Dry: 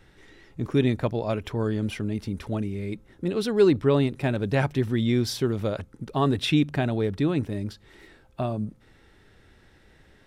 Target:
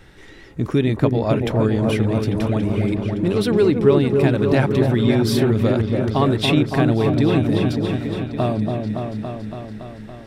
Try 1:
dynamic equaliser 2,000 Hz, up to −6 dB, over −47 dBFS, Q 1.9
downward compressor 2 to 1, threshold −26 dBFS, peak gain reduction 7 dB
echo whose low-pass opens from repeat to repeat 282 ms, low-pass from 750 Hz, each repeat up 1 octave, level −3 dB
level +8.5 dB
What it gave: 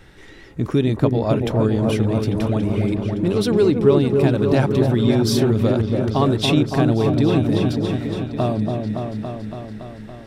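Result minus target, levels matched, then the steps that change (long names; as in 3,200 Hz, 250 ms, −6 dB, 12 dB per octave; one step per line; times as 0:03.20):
2,000 Hz band −3.0 dB
change: dynamic equaliser 6,100 Hz, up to −6 dB, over −47 dBFS, Q 1.9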